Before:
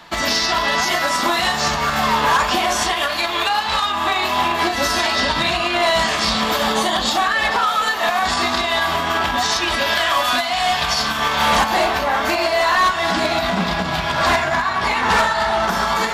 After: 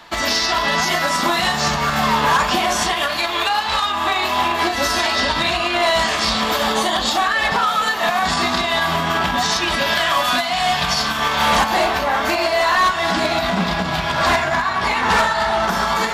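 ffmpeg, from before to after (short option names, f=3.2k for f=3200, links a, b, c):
-af "asetnsamples=n=441:p=0,asendcmd='0.64 equalizer g 7;3.18 equalizer g -3;7.52 equalizer g 9;10.98 equalizer g 1.5',equalizer=f=170:t=o:w=0.56:g=-5"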